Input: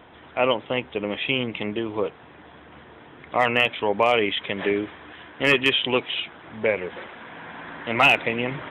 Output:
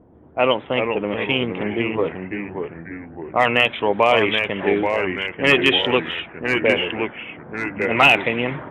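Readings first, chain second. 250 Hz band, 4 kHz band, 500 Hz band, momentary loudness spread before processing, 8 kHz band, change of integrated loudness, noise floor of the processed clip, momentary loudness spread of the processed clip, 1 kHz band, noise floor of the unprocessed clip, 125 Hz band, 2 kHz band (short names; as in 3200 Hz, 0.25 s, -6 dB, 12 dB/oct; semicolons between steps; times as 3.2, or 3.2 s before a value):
+5.5 dB, +3.5 dB, +4.5 dB, 18 LU, n/a, +3.5 dB, -42 dBFS, 15 LU, +4.0 dB, -48 dBFS, +5.0 dB, +4.5 dB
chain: low-pass opened by the level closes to 350 Hz, open at -17 dBFS; echoes that change speed 0.342 s, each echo -2 st, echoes 3, each echo -6 dB; gain +3.5 dB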